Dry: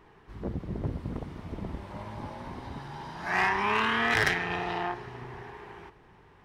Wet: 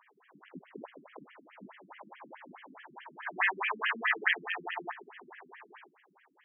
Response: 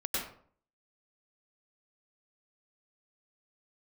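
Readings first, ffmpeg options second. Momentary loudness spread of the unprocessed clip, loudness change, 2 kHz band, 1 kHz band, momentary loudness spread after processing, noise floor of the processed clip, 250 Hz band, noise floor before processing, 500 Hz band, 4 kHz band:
18 LU, −1.0 dB, −3.0 dB, −8.0 dB, 22 LU, −68 dBFS, −14.0 dB, −57 dBFS, −10.5 dB, −5.5 dB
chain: -af "aemphasis=mode=production:type=riaa,acrusher=bits=3:mode=log:mix=0:aa=0.000001,afftfilt=real='re*between(b*sr/1024,220*pow(2400/220,0.5+0.5*sin(2*PI*4.7*pts/sr))/1.41,220*pow(2400/220,0.5+0.5*sin(2*PI*4.7*pts/sr))*1.41)':imag='im*between(b*sr/1024,220*pow(2400/220,0.5+0.5*sin(2*PI*4.7*pts/sr))/1.41,220*pow(2400/220,0.5+0.5*sin(2*PI*4.7*pts/sr))*1.41)':win_size=1024:overlap=0.75"

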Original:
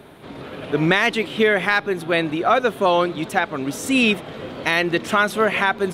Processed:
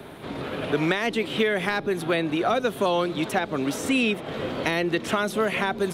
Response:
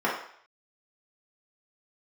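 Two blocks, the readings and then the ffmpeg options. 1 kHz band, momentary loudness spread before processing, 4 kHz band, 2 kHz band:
−6.5 dB, 9 LU, −4.5 dB, −7.5 dB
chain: -filter_complex "[0:a]acrossover=split=250|620|3400[link_01][link_02][link_03][link_04];[link_01]acompressor=threshold=-36dB:ratio=4[link_05];[link_02]acompressor=threshold=-29dB:ratio=4[link_06];[link_03]acompressor=threshold=-32dB:ratio=4[link_07];[link_04]acompressor=threshold=-40dB:ratio=4[link_08];[link_05][link_06][link_07][link_08]amix=inputs=4:normalize=0,volume=3dB"

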